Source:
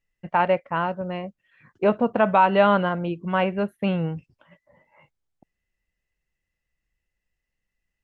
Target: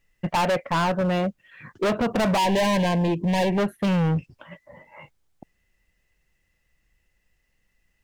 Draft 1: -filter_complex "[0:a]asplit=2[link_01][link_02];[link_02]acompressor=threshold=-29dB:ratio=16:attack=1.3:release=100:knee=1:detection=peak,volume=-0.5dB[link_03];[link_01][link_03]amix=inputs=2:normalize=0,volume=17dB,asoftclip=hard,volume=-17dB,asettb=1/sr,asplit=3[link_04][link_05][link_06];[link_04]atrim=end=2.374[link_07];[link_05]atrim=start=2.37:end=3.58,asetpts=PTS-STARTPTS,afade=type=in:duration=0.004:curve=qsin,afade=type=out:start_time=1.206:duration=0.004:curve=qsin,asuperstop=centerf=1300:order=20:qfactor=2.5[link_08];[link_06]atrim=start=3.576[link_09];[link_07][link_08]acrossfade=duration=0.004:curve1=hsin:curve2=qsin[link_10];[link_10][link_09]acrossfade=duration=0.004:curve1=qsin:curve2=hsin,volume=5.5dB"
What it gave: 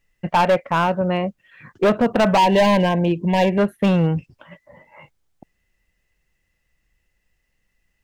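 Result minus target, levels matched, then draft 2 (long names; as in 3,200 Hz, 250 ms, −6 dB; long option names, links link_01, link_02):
gain into a clipping stage and back: distortion −5 dB
-filter_complex "[0:a]asplit=2[link_01][link_02];[link_02]acompressor=threshold=-29dB:ratio=16:attack=1.3:release=100:knee=1:detection=peak,volume=-0.5dB[link_03];[link_01][link_03]amix=inputs=2:normalize=0,volume=25dB,asoftclip=hard,volume=-25dB,asettb=1/sr,asplit=3[link_04][link_05][link_06];[link_04]atrim=end=2.374[link_07];[link_05]atrim=start=2.37:end=3.58,asetpts=PTS-STARTPTS,afade=type=in:duration=0.004:curve=qsin,afade=type=out:start_time=1.206:duration=0.004:curve=qsin,asuperstop=centerf=1300:order=20:qfactor=2.5[link_08];[link_06]atrim=start=3.576[link_09];[link_07][link_08]acrossfade=duration=0.004:curve1=hsin:curve2=qsin[link_10];[link_10][link_09]acrossfade=duration=0.004:curve1=qsin:curve2=hsin,volume=5.5dB"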